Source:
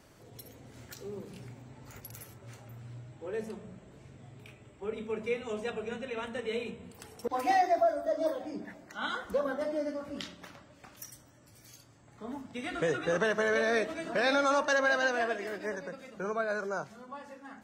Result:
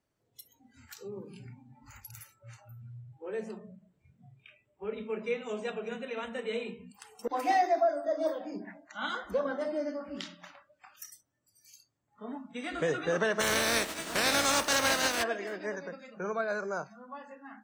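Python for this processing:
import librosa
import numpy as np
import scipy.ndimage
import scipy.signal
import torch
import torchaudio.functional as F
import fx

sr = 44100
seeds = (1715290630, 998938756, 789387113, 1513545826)

y = fx.spec_flatten(x, sr, power=0.39, at=(13.39, 15.22), fade=0.02)
y = fx.noise_reduce_blind(y, sr, reduce_db=23)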